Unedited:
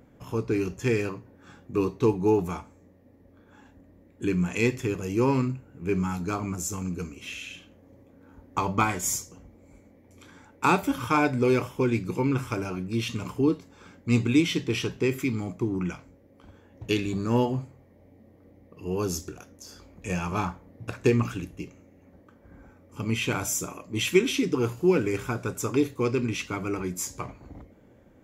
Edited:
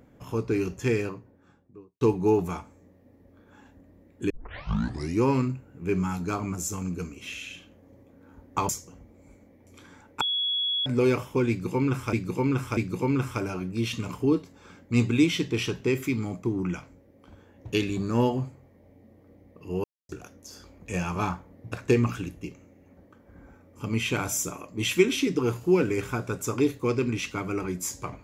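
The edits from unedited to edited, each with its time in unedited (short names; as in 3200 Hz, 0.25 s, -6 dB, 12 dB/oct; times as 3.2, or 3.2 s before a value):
0.79–2.01 studio fade out
4.3 tape start 0.92 s
8.69–9.13 cut
10.65–11.3 bleep 3360 Hz -24 dBFS
11.93–12.57 loop, 3 plays
19–19.25 mute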